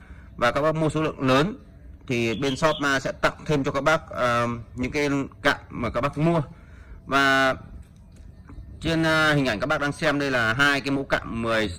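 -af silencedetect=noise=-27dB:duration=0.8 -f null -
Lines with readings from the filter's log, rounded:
silence_start: 7.54
silence_end: 8.84 | silence_duration: 1.30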